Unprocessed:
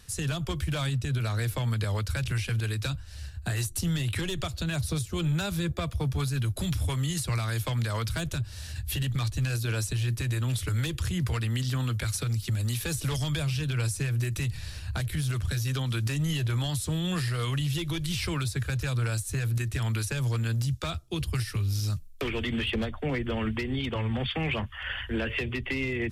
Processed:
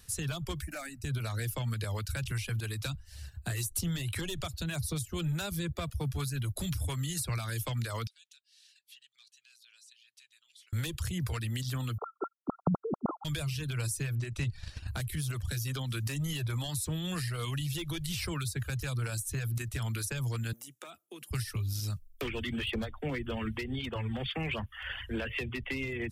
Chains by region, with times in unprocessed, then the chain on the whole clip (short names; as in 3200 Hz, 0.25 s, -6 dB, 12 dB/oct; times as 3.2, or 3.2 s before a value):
0.62–1.04 dynamic EQ 3200 Hz, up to +4 dB, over -45 dBFS, Q 0.89 + fixed phaser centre 670 Hz, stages 8
8.07–10.73 compressor, threshold -31 dBFS + ladder band-pass 4000 Hz, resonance 25%
11.98–13.25 sine-wave speech + brick-wall FIR low-pass 1400 Hz
14.15–14.88 transient shaper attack +11 dB, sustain -2 dB + air absorption 80 m
20.53–21.31 HPF 250 Hz 24 dB/oct + bell 4500 Hz -13.5 dB 0.54 oct + compressor, threshold -38 dBFS
whole clip: reverb removal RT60 0.51 s; high shelf 10000 Hz +9.5 dB; gain -4.5 dB